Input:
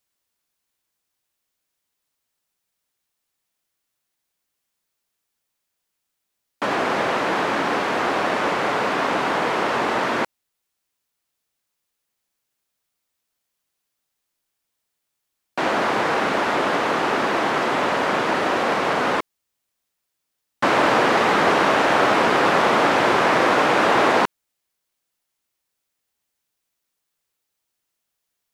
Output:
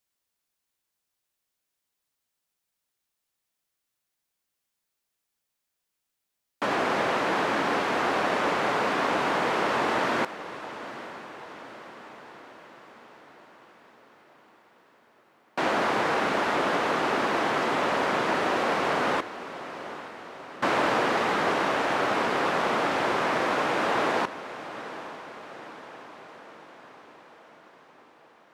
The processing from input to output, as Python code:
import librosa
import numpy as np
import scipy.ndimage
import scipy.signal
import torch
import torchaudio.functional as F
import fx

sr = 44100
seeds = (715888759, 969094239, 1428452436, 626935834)

y = fx.rider(x, sr, range_db=10, speed_s=2.0)
y = fx.echo_diffused(y, sr, ms=851, feedback_pct=59, wet_db=-14.0)
y = y * librosa.db_to_amplitude(-6.0)